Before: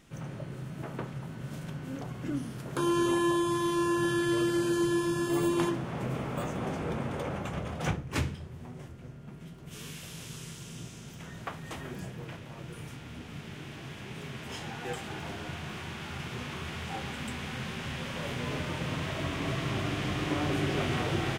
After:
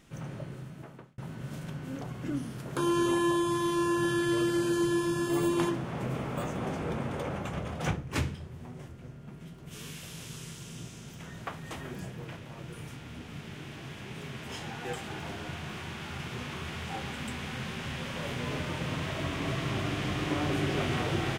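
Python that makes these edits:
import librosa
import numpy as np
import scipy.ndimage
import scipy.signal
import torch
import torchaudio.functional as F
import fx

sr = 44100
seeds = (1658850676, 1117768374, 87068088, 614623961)

y = fx.edit(x, sr, fx.fade_out_span(start_s=0.41, length_s=0.77), tone=tone)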